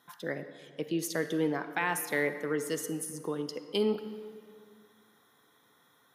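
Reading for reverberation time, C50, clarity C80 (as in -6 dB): 2.3 s, 10.5 dB, 11.5 dB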